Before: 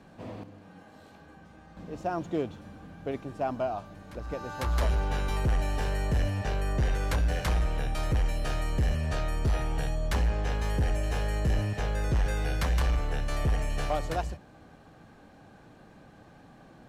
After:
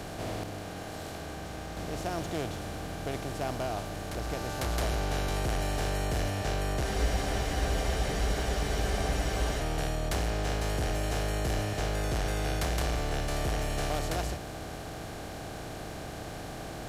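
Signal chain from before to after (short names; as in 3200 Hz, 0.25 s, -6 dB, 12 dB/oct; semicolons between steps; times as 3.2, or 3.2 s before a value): per-bin compression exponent 0.4; high shelf 2800 Hz +9.5 dB; spectral freeze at 6.84, 2.76 s; gain -8.5 dB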